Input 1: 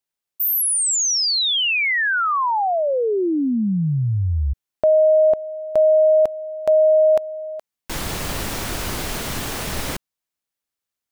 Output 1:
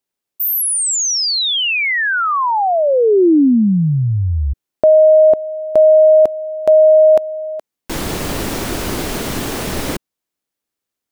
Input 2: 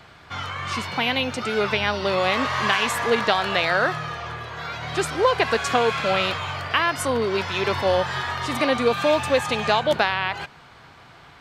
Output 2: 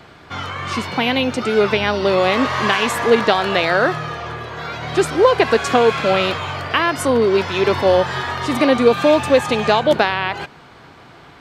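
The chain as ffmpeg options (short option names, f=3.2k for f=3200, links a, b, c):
-af "equalizer=f=320:w=0.78:g=7.5,volume=2.5dB"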